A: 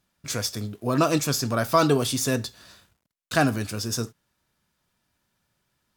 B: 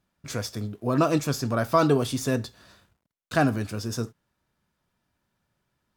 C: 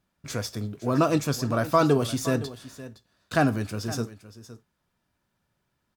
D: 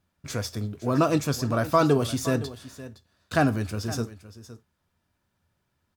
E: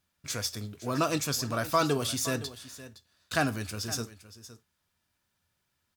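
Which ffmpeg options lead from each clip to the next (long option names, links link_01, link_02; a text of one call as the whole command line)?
ffmpeg -i in.wav -af "highshelf=frequency=2400:gain=-8.5" out.wav
ffmpeg -i in.wav -af "aecho=1:1:515:0.168" out.wav
ffmpeg -i in.wav -af "equalizer=frequency=84:width=6.1:gain=13" out.wav
ffmpeg -i in.wav -af "tiltshelf=frequency=1500:gain=-6,volume=-2dB" out.wav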